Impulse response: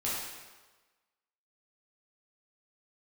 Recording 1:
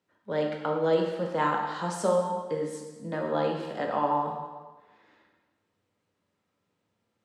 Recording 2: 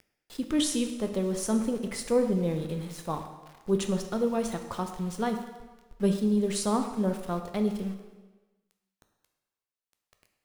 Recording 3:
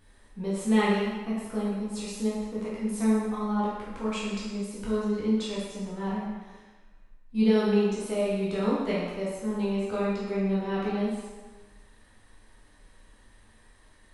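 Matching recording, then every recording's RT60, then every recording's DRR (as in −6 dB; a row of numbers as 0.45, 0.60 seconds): 3; 1.3, 1.3, 1.3 seconds; 0.0, 5.5, −8.0 decibels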